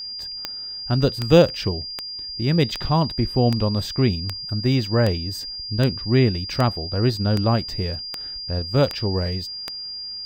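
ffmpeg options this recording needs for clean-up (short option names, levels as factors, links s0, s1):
-af "adeclick=t=4,bandreject=f=4800:w=30"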